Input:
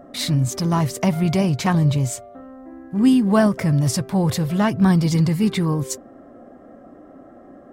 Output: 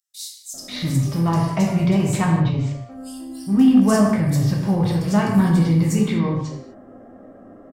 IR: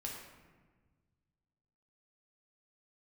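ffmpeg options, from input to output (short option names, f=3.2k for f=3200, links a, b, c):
-filter_complex "[0:a]acrossover=split=4600[a][b];[a]adelay=540[c];[c][b]amix=inputs=2:normalize=0[d];[1:a]atrim=start_sample=2205,afade=t=out:st=0.31:d=0.01,atrim=end_sample=14112[e];[d][e]afir=irnorm=-1:irlink=0,aeval=exprs='0.562*(cos(1*acos(clip(val(0)/0.562,-1,1)))-cos(1*PI/2))+0.0251*(cos(5*acos(clip(val(0)/0.562,-1,1)))-cos(5*PI/2))+0.00794*(cos(7*acos(clip(val(0)/0.562,-1,1)))-cos(7*PI/2))':c=same"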